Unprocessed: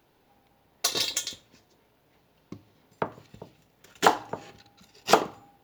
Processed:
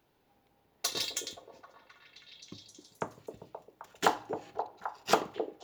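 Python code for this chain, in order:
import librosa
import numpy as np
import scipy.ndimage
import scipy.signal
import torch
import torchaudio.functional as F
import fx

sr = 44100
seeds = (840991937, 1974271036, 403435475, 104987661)

y = fx.echo_stepped(x, sr, ms=263, hz=400.0, octaves=0.7, feedback_pct=70, wet_db=-3.5)
y = y * 10.0 ** (-6.5 / 20.0)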